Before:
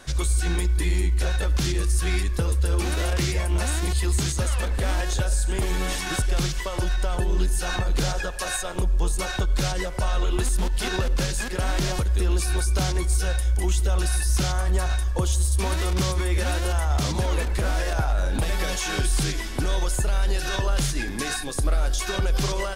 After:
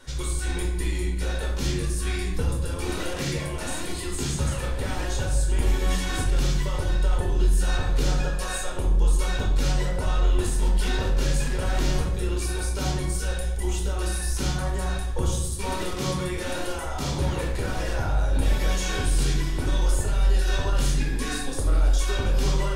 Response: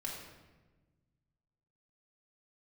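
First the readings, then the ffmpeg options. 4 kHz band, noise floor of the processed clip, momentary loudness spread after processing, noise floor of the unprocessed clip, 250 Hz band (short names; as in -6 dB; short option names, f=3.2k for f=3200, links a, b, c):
-2.5 dB, -30 dBFS, 5 LU, -29 dBFS, -0.5 dB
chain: -filter_complex "[1:a]atrim=start_sample=2205,asetrate=74970,aresample=44100[a];[0:a][a]afir=irnorm=-1:irlink=0,volume=2dB"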